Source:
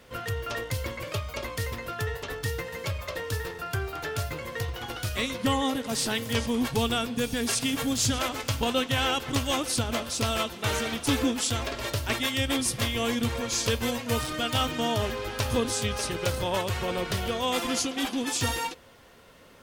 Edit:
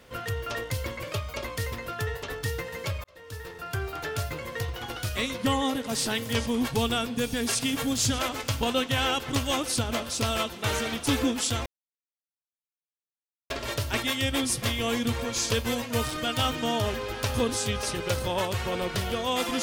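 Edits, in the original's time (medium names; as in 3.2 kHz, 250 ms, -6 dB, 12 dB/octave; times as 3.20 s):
3.04–3.86 s: fade in
11.66 s: insert silence 1.84 s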